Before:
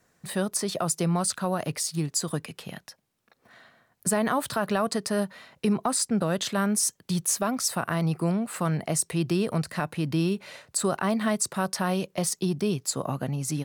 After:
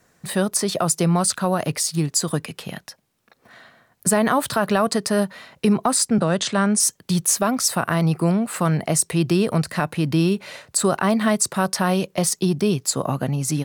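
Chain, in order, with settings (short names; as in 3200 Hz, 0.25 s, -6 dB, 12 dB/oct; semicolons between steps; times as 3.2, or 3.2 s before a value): 6.18–6.8 Chebyshev band-pass 100–9700 Hz, order 5; gain +6.5 dB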